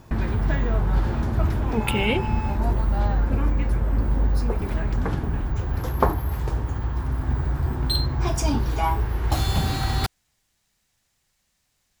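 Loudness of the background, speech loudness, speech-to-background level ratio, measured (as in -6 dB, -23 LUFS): -25.0 LUFS, -26.5 LUFS, -1.5 dB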